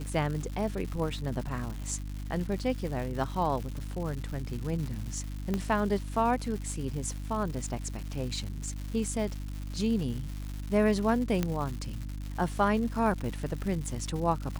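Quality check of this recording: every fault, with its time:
crackle 290 per s -36 dBFS
hum 50 Hz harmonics 6 -37 dBFS
5.54 s: pop -17 dBFS
11.43 s: pop -14 dBFS

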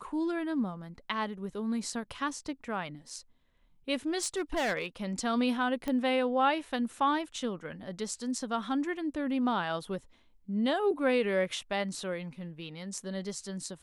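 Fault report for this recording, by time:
4.23–4.86 s: clipped -26 dBFS
5.88 s: pop -20 dBFS

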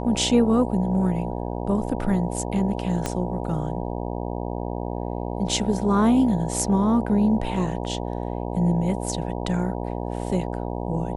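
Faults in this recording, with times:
buzz 60 Hz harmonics 16 -29 dBFS
3.06 s: pop -10 dBFS

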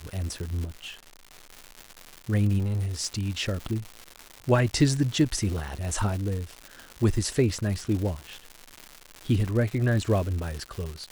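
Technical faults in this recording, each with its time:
crackle 240 per s -31 dBFS
0.64–1.47 s: clipped -33 dBFS
2.58–3.07 s: clipped -23.5 dBFS

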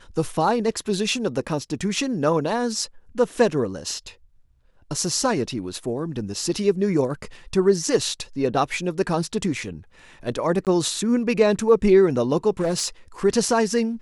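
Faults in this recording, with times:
10.65–10.67 s: dropout 18 ms
12.60–12.87 s: clipped -17.5 dBFS

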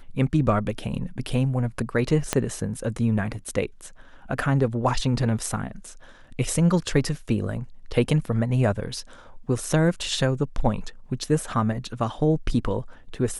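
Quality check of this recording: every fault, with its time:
2.33 s: pop -6 dBFS

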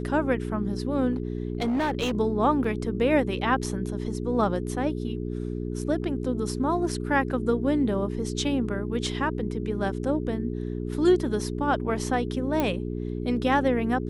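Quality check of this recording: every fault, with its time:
hum 60 Hz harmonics 7 -31 dBFS
1.13–2.15 s: clipped -22 dBFS
2.64 s: dropout 3.9 ms
12.60 s: pop -12 dBFS

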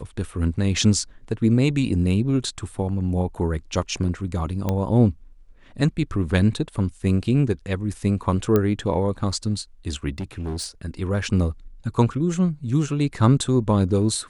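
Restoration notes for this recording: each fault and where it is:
4.69 s: pop -11 dBFS
8.56 s: pop -8 dBFS
10.18–10.67 s: clipped -25 dBFS

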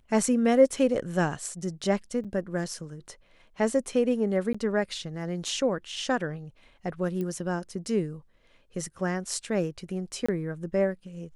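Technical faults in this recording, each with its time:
2.24–2.25 s: dropout 6.7 ms
4.53–4.54 s: dropout 15 ms
7.21 s: pop -22 dBFS
10.26–10.29 s: dropout 25 ms

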